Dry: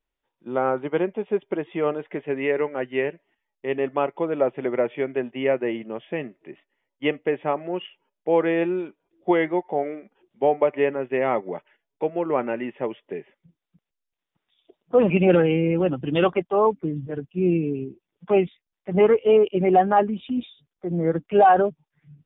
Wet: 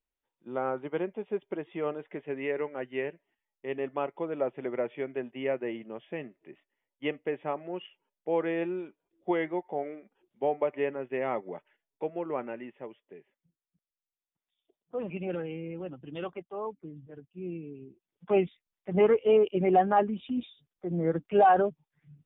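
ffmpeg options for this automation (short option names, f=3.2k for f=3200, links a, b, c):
-af "volume=3dB,afade=t=out:st=12.12:d=0.89:silence=0.375837,afade=t=in:st=17.8:d=0.56:silence=0.266073"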